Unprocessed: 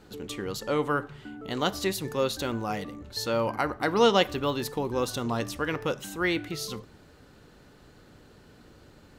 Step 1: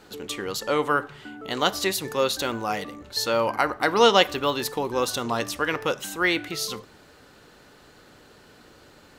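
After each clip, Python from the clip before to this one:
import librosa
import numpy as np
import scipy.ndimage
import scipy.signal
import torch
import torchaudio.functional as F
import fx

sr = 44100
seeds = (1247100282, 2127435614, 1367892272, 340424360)

y = fx.low_shelf(x, sr, hz=300.0, db=-11.5)
y = y * 10.0 ** (6.5 / 20.0)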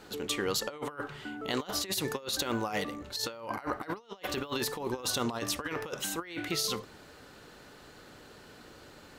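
y = fx.over_compress(x, sr, threshold_db=-29.0, ratio=-0.5)
y = y * 10.0 ** (-5.0 / 20.0)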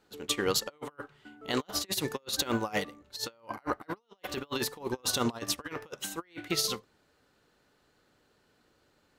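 y = fx.upward_expand(x, sr, threshold_db=-43.0, expansion=2.5)
y = y * 10.0 ** (4.5 / 20.0)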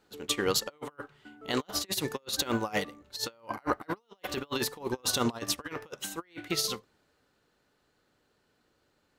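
y = fx.rider(x, sr, range_db=4, speed_s=2.0)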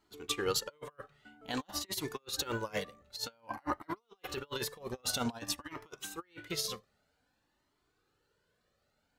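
y = fx.comb_cascade(x, sr, direction='rising', hz=0.52)
y = y * 10.0 ** (-1.0 / 20.0)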